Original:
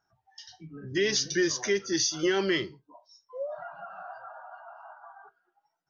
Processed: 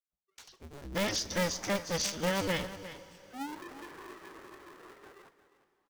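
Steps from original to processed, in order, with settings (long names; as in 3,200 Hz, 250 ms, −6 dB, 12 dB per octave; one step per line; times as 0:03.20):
sub-harmonics by changed cycles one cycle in 2, inverted
downward expander −53 dBFS
low-shelf EQ 210 Hz +4.5 dB
single-tap delay 353 ms −14 dB
dense smooth reverb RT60 4.7 s, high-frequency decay 0.95×, pre-delay 0 ms, DRR 16.5 dB
level −6 dB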